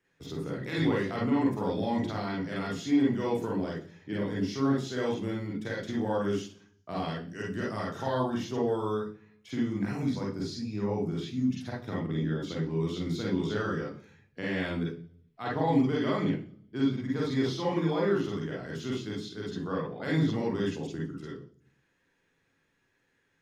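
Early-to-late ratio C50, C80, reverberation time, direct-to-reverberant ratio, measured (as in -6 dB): 2.0 dB, 10.5 dB, 0.45 s, -5.0 dB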